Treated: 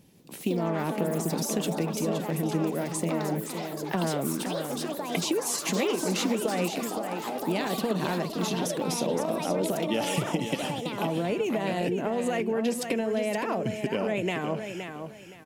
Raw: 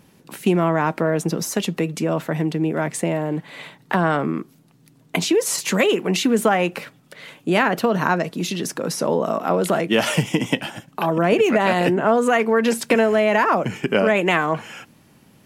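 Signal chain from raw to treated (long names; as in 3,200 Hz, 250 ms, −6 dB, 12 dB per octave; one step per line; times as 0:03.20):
parametric band 1,300 Hz −11 dB 1.2 octaves
downward compressor, threshold −20 dBFS, peak gain reduction 7 dB
repeating echo 518 ms, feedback 25%, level −7.5 dB
delay with pitch and tempo change per echo 159 ms, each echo +5 semitones, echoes 3, each echo −6 dB
level −4.5 dB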